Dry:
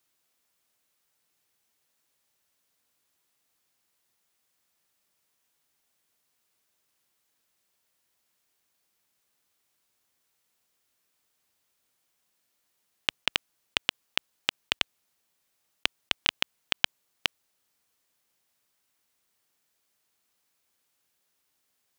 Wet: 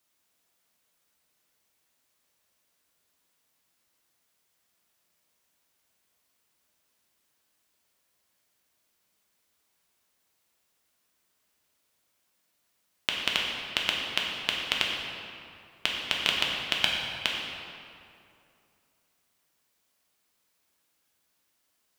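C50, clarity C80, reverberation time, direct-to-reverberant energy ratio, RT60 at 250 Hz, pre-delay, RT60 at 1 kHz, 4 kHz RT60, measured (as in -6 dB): 0.5 dB, 2.0 dB, 2.6 s, -2.0 dB, 2.7 s, 3 ms, 2.5 s, 1.6 s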